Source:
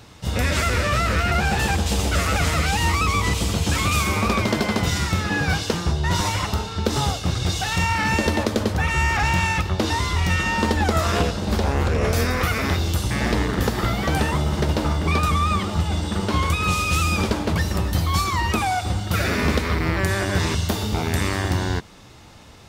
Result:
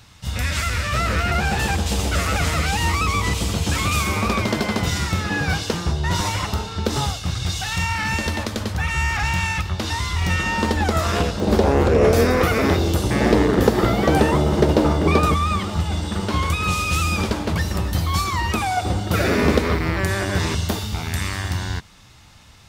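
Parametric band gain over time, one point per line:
parametric band 410 Hz 2 octaves
−11 dB
from 0:00.94 −0.5 dB
from 0:07.06 −8 dB
from 0:10.22 0 dB
from 0:11.40 +10 dB
from 0:15.34 −1 dB
from 0:18.77 +7 dB
from 0:19.76 0 dB
from 0:20.79 −10.5 dB

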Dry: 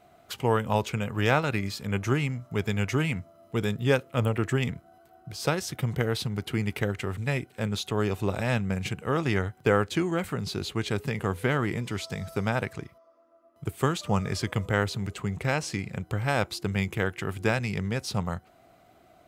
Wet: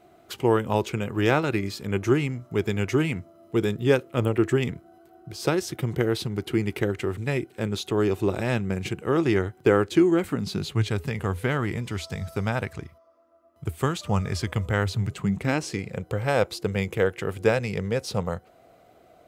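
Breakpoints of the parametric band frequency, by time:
parametric band +11 dB 0.5 octaves
0:10.23 350 Hz
0:11.00 77 Hz
0:14.81 77 Hz
0:15.82 490 Hz

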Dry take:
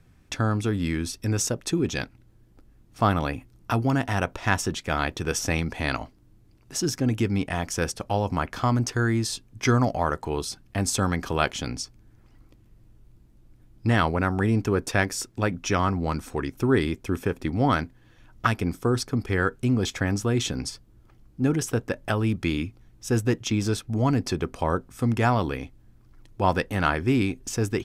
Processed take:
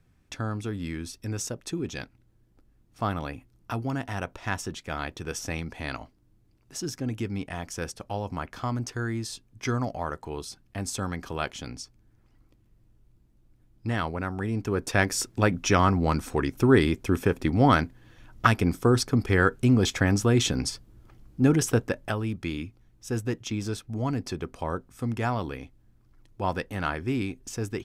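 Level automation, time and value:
0:14.50 −7 dB
0:15.17 +2.5 dB
0:21.76 +2.5 dB
0:22.25 −6 dB

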